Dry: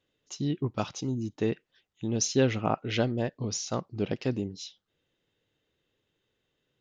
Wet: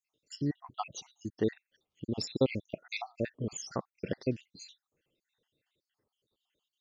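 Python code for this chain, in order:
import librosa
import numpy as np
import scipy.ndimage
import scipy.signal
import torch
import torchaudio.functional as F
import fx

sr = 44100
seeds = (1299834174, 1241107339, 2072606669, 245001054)

y = fx.spec_dropout(x, sr, seeds[0], share_pct=68)
y = fx.low_shelf(y, sr, hz=110.0, db=-6.5)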